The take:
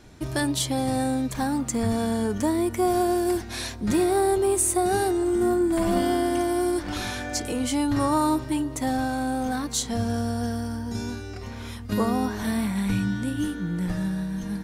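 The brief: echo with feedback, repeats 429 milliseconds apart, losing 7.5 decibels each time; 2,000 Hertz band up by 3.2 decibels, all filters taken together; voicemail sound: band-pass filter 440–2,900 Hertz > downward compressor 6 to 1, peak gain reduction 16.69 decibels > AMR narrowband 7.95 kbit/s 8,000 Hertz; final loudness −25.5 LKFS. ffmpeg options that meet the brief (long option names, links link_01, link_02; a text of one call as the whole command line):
ffmpeg -i in.wav -af "highpass=440,lowpass=2900,equalizer=frequency=2000:width_type=o:gain=5,aecho=1:1:429|858|1287|1716|2145:0.422|0.177|0.0744|0.0312|0.0131,acompressor=threshold=-37dB:ratio=6,volume=15dB" -ar 8000 -c:a libopencore_amrnb -b:a 7950 out.amr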